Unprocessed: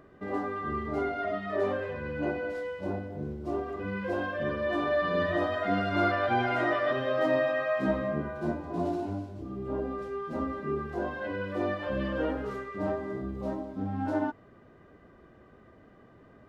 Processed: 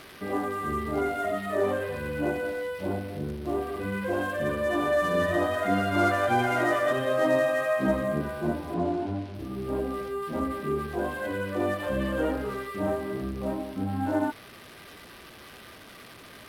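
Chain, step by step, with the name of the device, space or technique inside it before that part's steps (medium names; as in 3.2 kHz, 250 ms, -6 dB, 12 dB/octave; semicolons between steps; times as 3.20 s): budget class-D amplifier (dead-time distortion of 0.059 ms; zero-crossing glitches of -28.5 dBFS); 8.74–9.35 s: distance through air 73 m; distance through air 57 m; trim +3 dB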